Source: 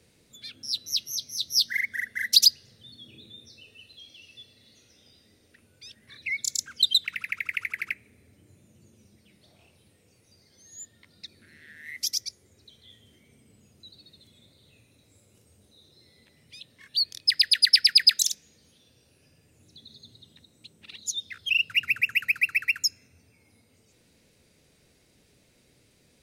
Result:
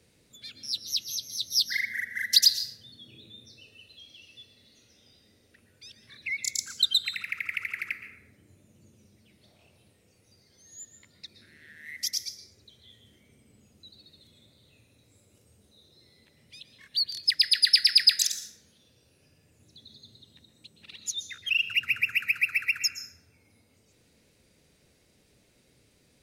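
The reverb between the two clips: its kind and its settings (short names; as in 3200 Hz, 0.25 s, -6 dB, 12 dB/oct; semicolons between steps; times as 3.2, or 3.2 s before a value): plate-style reverb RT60 0.94 s, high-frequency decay 0.45×, pre-delay 0.105 s, DRR 8.5 dB; gain -2 dB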